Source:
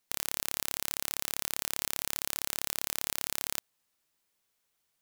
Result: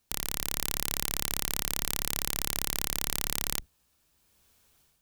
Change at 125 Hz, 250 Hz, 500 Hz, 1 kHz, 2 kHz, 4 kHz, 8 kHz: +11.5 dB, +7.5 dB, +4.5 dB, +3.5 dB, +2.0 dB, +3.0 dB, +3.0 dB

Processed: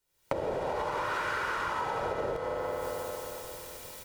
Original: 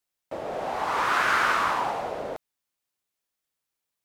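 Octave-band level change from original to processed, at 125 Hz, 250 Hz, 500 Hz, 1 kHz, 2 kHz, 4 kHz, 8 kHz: +3.0 dB, -1.5 dB, +1.0 dB, -7.0 dB, -8.5 dB, -8.0 dB, -3.5 dB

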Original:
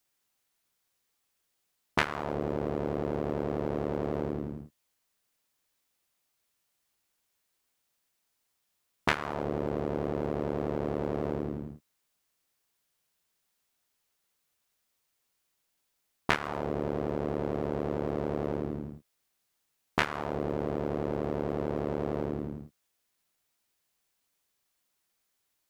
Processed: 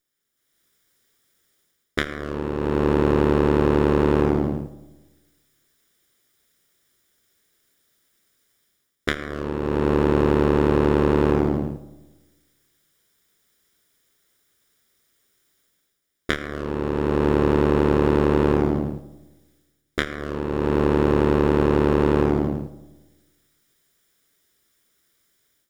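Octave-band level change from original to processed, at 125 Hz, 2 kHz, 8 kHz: +12.5 dB, +6.5 dB, no reading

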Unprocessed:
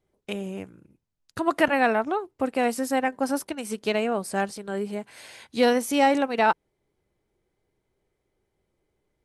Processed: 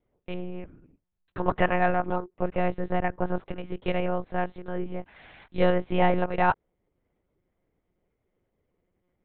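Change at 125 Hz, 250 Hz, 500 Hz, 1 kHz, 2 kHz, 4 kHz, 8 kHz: no reading, -4.0 dB, -3.0 dB, -2.5 dB, -4.0 dB, -9.0 dB, under -40 dB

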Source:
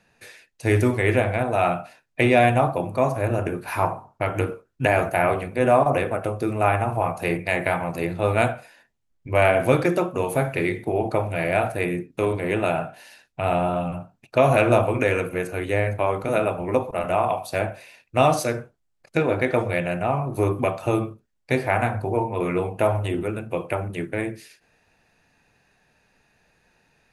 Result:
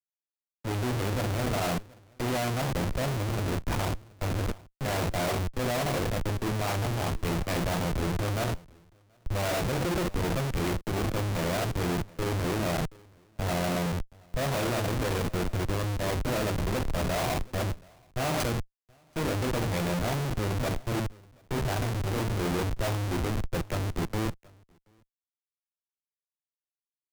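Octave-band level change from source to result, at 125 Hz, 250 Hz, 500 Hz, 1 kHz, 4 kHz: -3.0 dB, -5.5 dB, -10.5 dB, -10.0 dB, +2.5 dB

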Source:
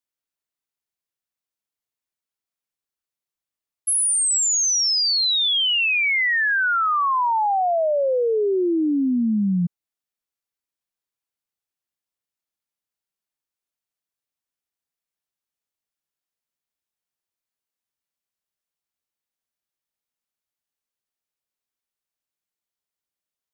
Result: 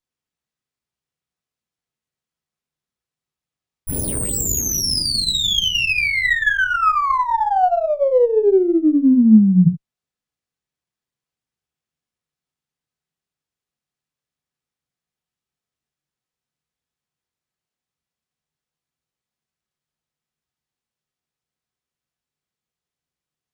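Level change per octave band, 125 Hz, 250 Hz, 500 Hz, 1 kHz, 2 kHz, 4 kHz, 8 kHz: +9.5 dB, +8.0 dB, +4.5 dB, +2.5 dB, +1.5 dB, 0.0 dB, -3.5 dB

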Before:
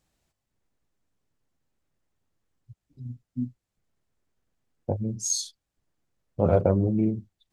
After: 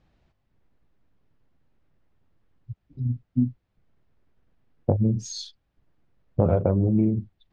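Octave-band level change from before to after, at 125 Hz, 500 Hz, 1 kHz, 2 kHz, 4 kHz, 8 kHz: +4.5 dB, -0.5 dB, -0.5 dB, no reading, -2.0 dB, -11.5 dB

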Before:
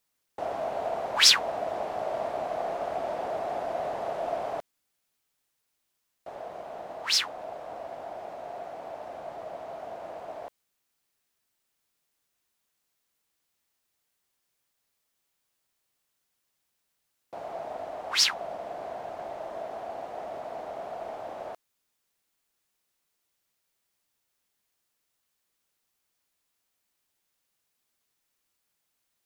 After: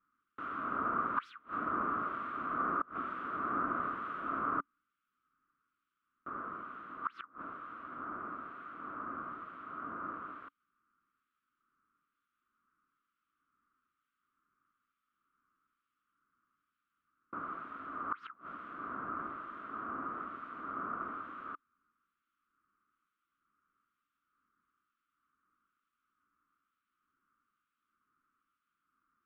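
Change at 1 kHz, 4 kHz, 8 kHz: -2.0 dB, under -35 dB, under -40 dB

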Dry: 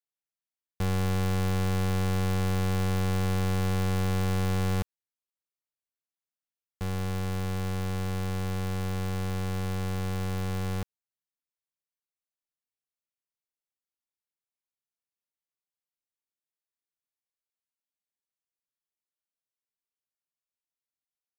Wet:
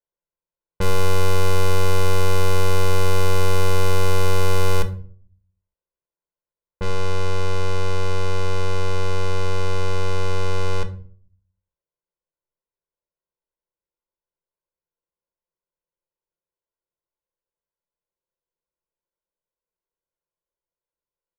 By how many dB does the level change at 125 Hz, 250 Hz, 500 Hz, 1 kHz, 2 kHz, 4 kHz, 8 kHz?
+4.0 dB, -1.5 dB, +12.0 dB, +9.5 dB, +9.0 dB, +10.0 dB, +9.0 dB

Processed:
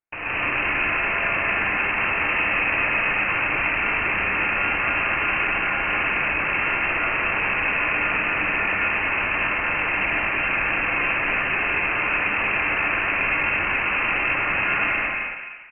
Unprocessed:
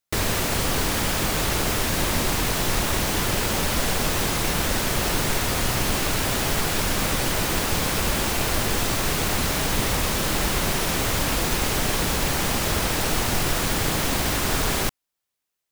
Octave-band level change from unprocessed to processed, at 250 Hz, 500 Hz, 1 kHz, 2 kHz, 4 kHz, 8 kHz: -6.5 dB, -4.0 dB, +2.0 dB, +9.5 dB, -9.5 dB, under -40 dB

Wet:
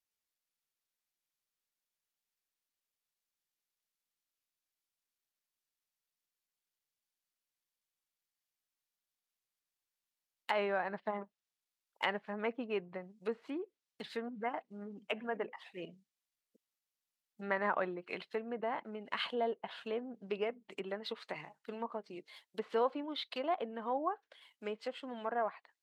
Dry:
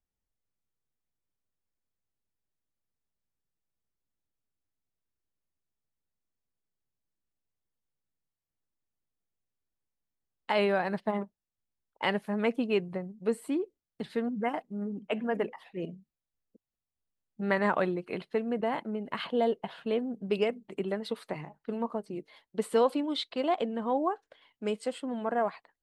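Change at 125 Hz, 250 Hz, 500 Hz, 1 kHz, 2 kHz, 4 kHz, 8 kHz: -13.0 dB, -11.5 dB, -7.5 dB, -5.0 dB, -4.5 dB, -4.5 dB, no reading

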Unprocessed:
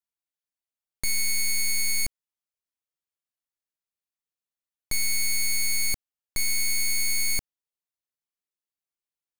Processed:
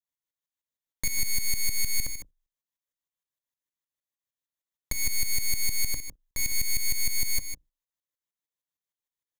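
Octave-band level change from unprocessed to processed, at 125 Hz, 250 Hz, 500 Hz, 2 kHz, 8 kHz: +2.0 dB, -1.0 dB, -1.5 dB, -5.0 dB, -2.5 dB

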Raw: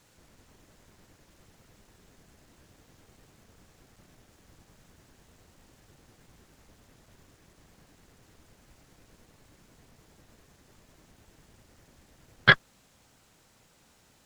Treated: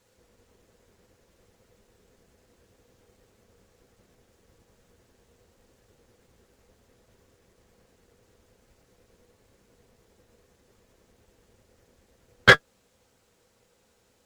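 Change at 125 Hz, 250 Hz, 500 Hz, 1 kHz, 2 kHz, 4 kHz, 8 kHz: +1.5 dB, +3.0 dB, +9.5 dB, +4.5 dB, +3.5 dB, +3.5 dB, +11.0 dB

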